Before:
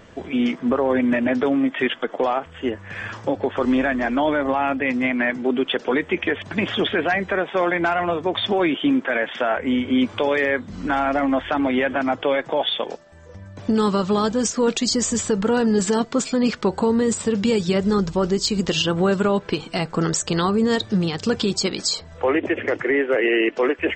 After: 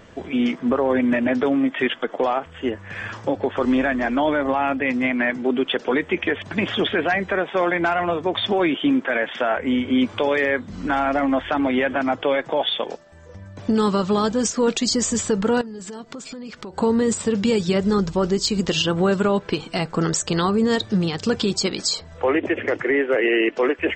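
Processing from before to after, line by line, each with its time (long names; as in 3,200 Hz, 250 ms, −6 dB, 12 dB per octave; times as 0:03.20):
0:15.61–0:16.78: downward compressor 8 to 1, threshold −32 dBFS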